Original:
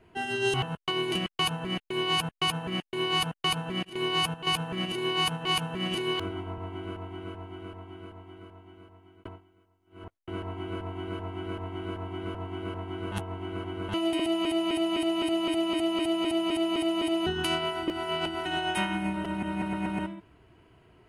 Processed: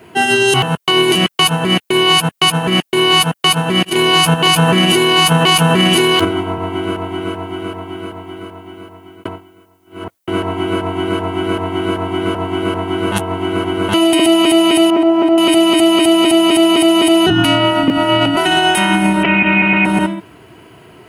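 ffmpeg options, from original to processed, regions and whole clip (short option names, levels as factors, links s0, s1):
-filter_complex "[0:a]asettb=1/sr,asplit=3[s0][s1][s2];[s0]atrim=end=3.914[s3];[s1]atrim=start=3.91:end=6.25,asetpts=PTS-STARTPTS,afade=t=in:d=0.004:c=qsin,afade=t=out:st=2.336:d=0.004:c=qsin,highpass=52,acontrast=84,asplit=2[s4][s5];[s5]adelay=12,volume=0.237[s6];[s4][s6]amix=inputs=2:normalize=0,atrim=end_sample=103194[s7];[s2]atrim=start=6.246[s8];[s3][s7]acrossfade=d=0.004:c1=hsin:c2=qsin[s9];[s9][s8]acrossfade=d=0.004:c1=qsin:c2=hsin,asettb=1/sr,asplit=3[s10][s11][s12];[s10]atrim=end=14.904[s13];[s11]atrim=start=14.9:end=15.38,asetpts=PTS-STARTPTS,afade=t=in:d=0.004:c=qsin,afade=t=out:st=0.476:d=0.004:c=qsin,aeval=exprs='val(0)+0.5*0.0141*sgn(val(0))':c=same,lowpass=1000,aemphasis=mode=production:type=bsi[s14];[s12]atrim=start=15.376[s15];[s13][s14]acrossfade=d=0.004:c1=hsin:c2=qsin[s16];[s16][s15]acrossfade=d=0.004:c1=qsin:c2=hsin,asettb=1/sr,asplit=3[s17][s18][s19];[s17]atrim=end=17.304[s20];[s18]atrim=start=17.3:end=18.37,asetpts=PTS-STARTPTS,afade=t=in:d=0.004:c=qsin,afade=t=out:st=1.066:d=0.004:c=qsin,bass=f=250:g=9,treble=f=4000:g=-10,afreqshift=-47[s21];[s19]atrim=start=18.366[s22];[s20][s21]acrossfade=d=0.004:c1=hsin:c2=qsin[s23];[s23][s22]acrossfade=d=0.004:c1=qsin:c2=hsin,asettb=1/sr,asplit=3[s24][s25][s26];[s24]atrim=end=19.234[s27];[s25]atrim=start=19.23:end=19.85,asetpts=PTS-STARTPTS,afade=t=in:d=0.004:c=qsin,afade=t=out:st=0.616:d=0.004:c=qsin,lowpass=f=2400:t=q:w=11,asplit=2[s28][s29];[s29]adelay=21,volume=0.211[s30];[s28][s30]amix=inputs=2:normalize=0,atrim=end_sample=27342[s31];[s26]atrim=start=19.846[s32];[s27][s31]acrossfade=d=0.004:c1=hsin:c2=qsin[s33];[s33][s32]acrossfade=d=0.004:c1=qsin:c2=hsin,highpass=130,highshelf=f=8000:g=11.5,alimiter=level_in=10.6:limit=0.891:release=50:level=0:latency=1,volume=0.794"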